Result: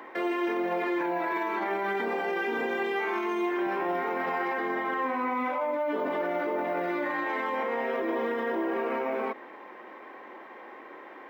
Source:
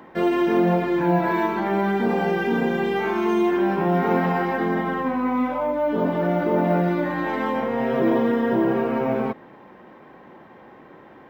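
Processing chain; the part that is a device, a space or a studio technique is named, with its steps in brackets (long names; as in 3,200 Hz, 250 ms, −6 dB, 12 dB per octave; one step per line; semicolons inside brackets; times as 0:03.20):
laptop speaker (high-pass filter 300 Hz 24 dB per octave; parametric band 1,100 Hz +4 dB 0.34 octaves; parametric band 2,100 Hz +7 dB 0.58 octaves; brickwall limiter −22 dBFS, peak gain reduction 11.5 dB)
0:02.29–0:03.67: high-pass filter 120 Hz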